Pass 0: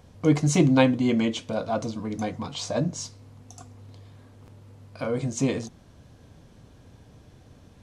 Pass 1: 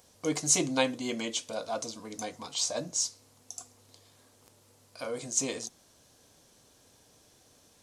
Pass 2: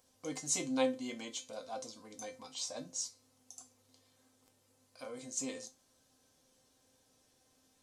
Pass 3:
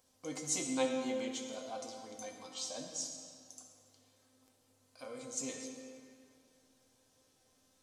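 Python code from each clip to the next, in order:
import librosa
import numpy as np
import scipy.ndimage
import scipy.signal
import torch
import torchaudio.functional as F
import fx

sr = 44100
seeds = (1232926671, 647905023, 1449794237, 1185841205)

y1 = fx.bass_treble(x, sr, bass_db=-14, treble_db=15)
y1 = F.gain(torch.from_numpy(y1), -6.0).numpy()
y2 = fx.comb_fb(y1, sr, f0_hz=260.0, decay_s=0.22, harmonics='all', damping=0.0, mix_pct=80)
y3 = fx.rev_freeverb(y2, sr, rt60_s=2.3, hf_ratio=0.8, predelay_ms=25, drr_db=3.5)
y3 = F.gain(torch.from_numpy(y3), -1.5).numpy()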